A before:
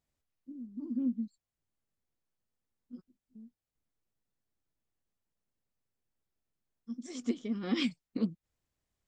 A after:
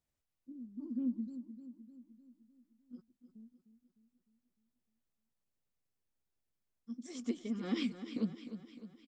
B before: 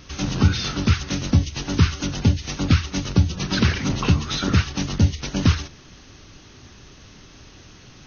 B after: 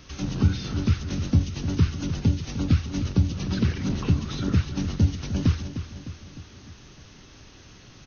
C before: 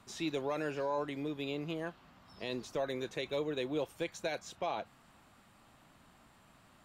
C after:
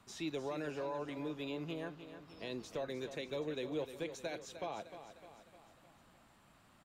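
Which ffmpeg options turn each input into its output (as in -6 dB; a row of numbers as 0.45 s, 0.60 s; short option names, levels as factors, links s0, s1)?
-filter_complex "[0:a]acrossover=split=480[s0][s1];[s1]acompressor=threshold=0.01:ratio=2[s2];[s0][s2]amix=inputs=2:normalize=0,aecho=1:1:304|608|912|1216|1520|1824:0.282|0.152|0.0822|0.0444|0.024|0.0129,volume=0.668"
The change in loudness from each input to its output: -4.0 LU, -4.0 LU, -4.5 LU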